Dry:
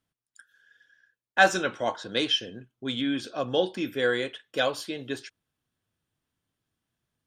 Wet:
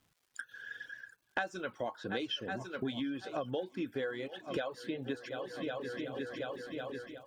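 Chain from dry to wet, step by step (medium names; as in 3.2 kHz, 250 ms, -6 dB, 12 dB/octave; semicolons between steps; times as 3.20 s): treble shelf 3.1 kHz -7 dB, from 1.81 s -12 dB; multi-head delay 366 ms, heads second and third, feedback 43%, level -20.5 dB; level rider gain up to 10 dB; treble shelf 9.2 kHz -5 dB; compression 12:1, threshold -42 dBFS, peak gain reduction 32 dB; crackle 470 per s -68 dBFS; reverb removal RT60 0.5 s; trim +8 dB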